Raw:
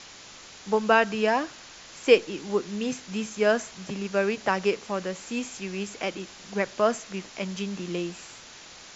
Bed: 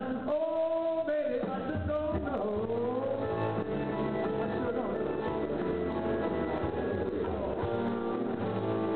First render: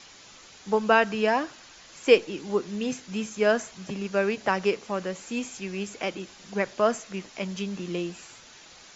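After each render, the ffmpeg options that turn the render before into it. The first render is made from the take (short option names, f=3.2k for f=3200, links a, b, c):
-af "afftdn=nr=6:nf=-47"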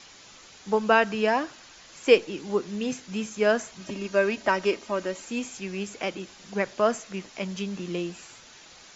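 -filter_complex "[0:a]asettb=1/sr,asplit=3[a][b][c];[a]atrim=end=3.804[d];[b]atrim=start=3.8:end=5.25,asetpts=PTS-STARTPTS,afade=t=in:d=0.004:c=qsin,afade=t=out:st=1.446:d=0.004:c=qsin,aecho=1:1:3.2:0.57,atrim=end_sample=63945[e];[c]atrim=start=5.246[f];[d][e]acrossfade=d=0.004:c1=hsin:c2=qsin[g];[g][f]acrossfade=d=0.004:c1=qsin:c2=hsin"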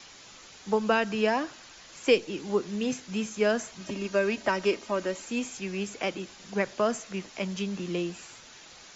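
-filter_complex "[0:a]acrossover=split=340|3000[a][b][c];[b]acompressor=threshold=-24dB:ratio=3[d];[a][d][c]amix=inputs=3:normalize=0"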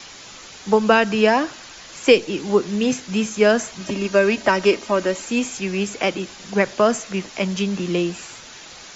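-af "volume=9.5dB,alimiter=limit=-2dB:level=0:latency=1"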